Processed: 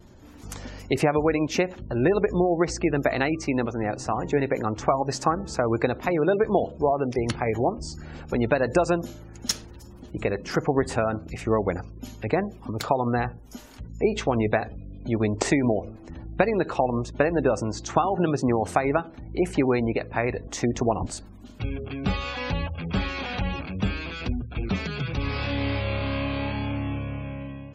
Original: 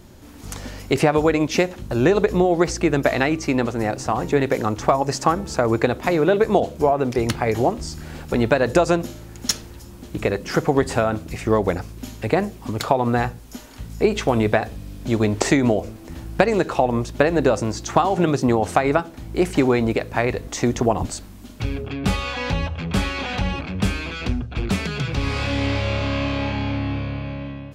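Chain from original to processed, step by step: spectral gate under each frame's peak -30 dB strong; vibrato 0.72 Hz 19 cents; trim -4.5 dB

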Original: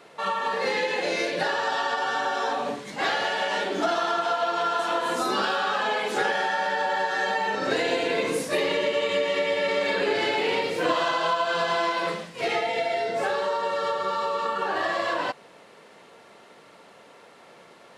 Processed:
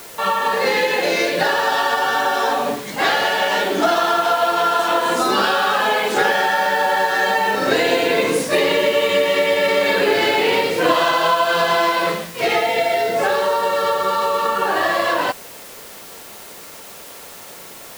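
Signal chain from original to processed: added noise white -47 dBFS; trim +8 dB

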